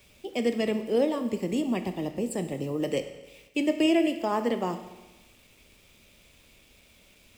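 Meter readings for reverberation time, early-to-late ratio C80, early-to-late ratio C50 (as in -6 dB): 1.1 s, 12.0 dB, 10.0 dB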